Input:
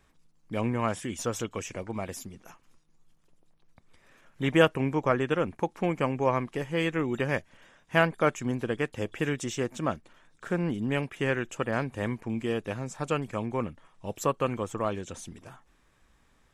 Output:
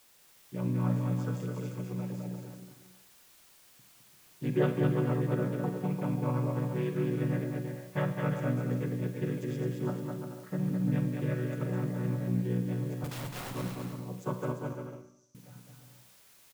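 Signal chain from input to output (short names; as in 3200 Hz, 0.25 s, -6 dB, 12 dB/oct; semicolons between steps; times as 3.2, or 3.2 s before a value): chord vocoder minor triad, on B2; expander -60 dBFS; added noise white -57 dBFS; 13.04–13.51 wrapped overs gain 32.5 dB; 14.52–15.35 band-pass 6000 Hz, Q 13; bouncing-ball echo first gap 0.21 s, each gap 0.65×, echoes 5; Schroeder reverb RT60 0.7 s, combs from 33 ms, DRR 7.5 dB; gain -5.5 dB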